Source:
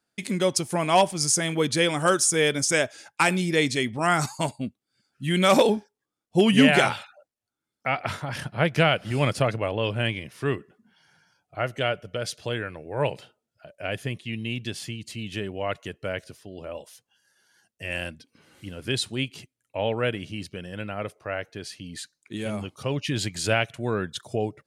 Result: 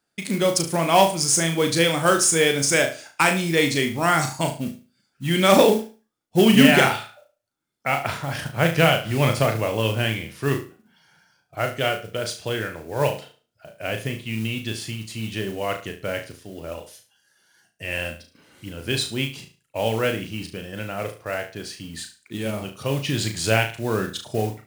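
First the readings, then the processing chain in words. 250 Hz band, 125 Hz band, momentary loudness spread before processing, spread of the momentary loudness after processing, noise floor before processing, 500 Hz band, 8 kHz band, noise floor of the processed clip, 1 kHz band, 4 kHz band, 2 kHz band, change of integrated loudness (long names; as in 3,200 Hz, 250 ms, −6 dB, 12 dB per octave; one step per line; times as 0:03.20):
+3.5 dB, +3.5 dB, 16 LU, 17 LU, below −85 dBFS, +3.5 dB, +3.5 dB, −73 dBFS, +3.0 dB, +3.5 dB, +3.5 dB, +3.5 dB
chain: flutter between parallel walls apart 6.2 metres, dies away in 0.35 s
noise that follows the level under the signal 19 dB
level +2 dB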